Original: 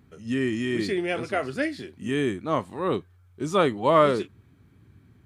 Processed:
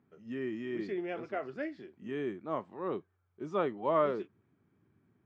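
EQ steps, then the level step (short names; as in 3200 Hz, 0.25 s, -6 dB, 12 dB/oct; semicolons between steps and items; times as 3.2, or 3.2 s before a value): speaker cabinet 270–6500 Hz, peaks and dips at 270 Hz -5 dB, 490 Hz -3 dB, 4100 Hz -5 dB; tilt -2 dB/oct; high shelf 3200 Hz -9.5 dB; -9.0 dB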